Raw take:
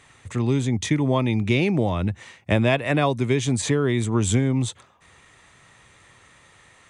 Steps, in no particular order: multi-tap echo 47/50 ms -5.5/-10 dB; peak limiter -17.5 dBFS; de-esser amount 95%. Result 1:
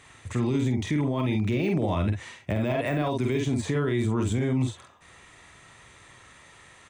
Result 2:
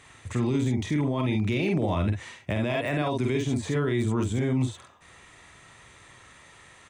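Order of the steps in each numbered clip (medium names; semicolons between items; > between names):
de-esser > multi-tap echo > peak limiter; multi-tap echo > peak limiter > de-esser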